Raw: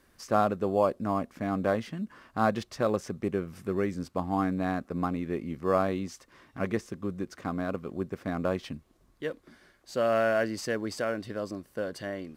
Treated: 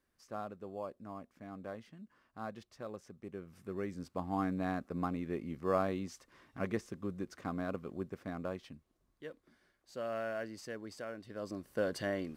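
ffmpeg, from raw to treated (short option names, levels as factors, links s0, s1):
-af "volume=2.24,afade=t=in:st=3.21:d=1.29:silence=0.266073,afade=t=out:st=7.8:d=0.89:silence=0.446684,afade=t=in:st=11.27:d=0.59:silence=0.223872"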